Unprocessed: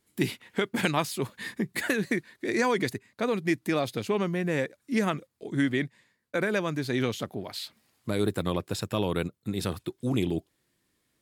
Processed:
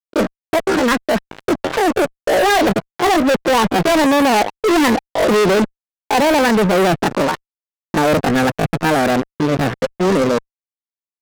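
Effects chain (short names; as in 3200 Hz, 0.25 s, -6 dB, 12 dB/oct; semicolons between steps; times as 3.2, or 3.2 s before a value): Doppler pass-by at 4.91, 19 m/s, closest 22 m; elliptic low-pass 1200 Hz, stop band 70 dB; fuzz box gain 50 dB, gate -53 dBFS; pitch shift +7.5 st; gain +1.5 dB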